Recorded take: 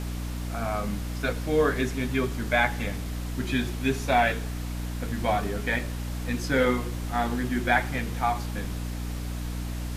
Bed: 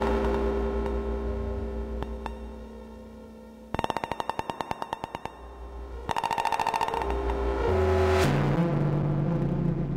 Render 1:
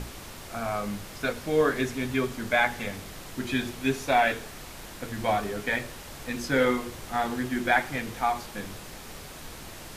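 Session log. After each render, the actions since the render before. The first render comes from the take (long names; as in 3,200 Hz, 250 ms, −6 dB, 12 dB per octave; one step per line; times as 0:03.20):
mains-hum notches 60/120/180/240/300 Hz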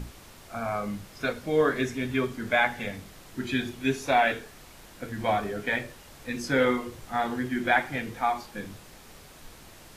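noise reduction from a noise print 7 dB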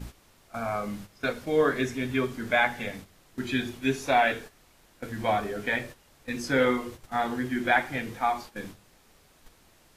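mains-hum notches 50/100/150/200 Hz
noise gate −41 dBFS, range −10 dB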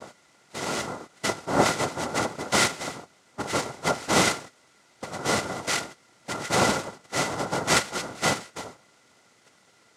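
cochlear-implant simulation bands 2
hollow resonant body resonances 1,400/2,000 Hz, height 13 dB, ringing for 30 ms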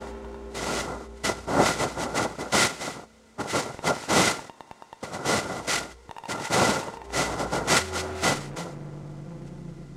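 mix in bed −13 dB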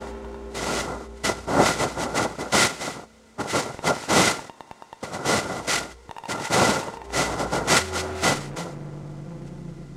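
level +2.5 dB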